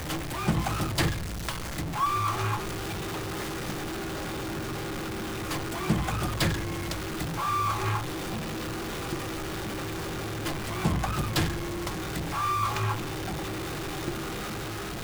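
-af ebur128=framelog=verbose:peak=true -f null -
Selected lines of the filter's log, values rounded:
Integrated loudness:
  I:         -30.7 LUFS
  Threshold: -40.7 LUFS
Loudness range:
  LRA:         2.8 LU
  Threshold: -50.7 LUFS
  LRA low:   -32.4 LUFS
  LRA high:  -29.5 LUFS
True peak:
  Peak:      -12.7 dBFS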